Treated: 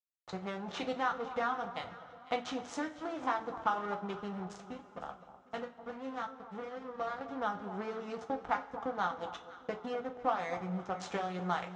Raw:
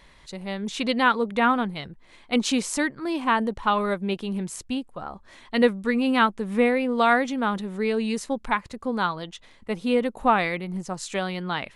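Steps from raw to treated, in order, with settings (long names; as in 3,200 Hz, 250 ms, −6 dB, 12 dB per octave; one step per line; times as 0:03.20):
downward compressor 8 to 1, threshold −33 dBFS, peak gain reduction 19 dB
0:04.53–0:07.21: flanger 1.2 Hz, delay 10 ms, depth 5.2 ms, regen −55%
slack as between gear wheels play −32.5 dBFS
loudspeaker in its box 100–6,000 Hz, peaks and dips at 220 Hz −10 dB, 750 Hz +9 dB, 1,300 Hz +8 dB, 2,500 Hz −4 dB, 4,500 Hz −7 dB
delay that swaps between a low-pass and a high-pass 251 ms, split 1,200 Hz, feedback 55%, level −12 dB
coupled-rooms reverb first 0.23 s, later 3 s, from −22 dB, DRR 3 dB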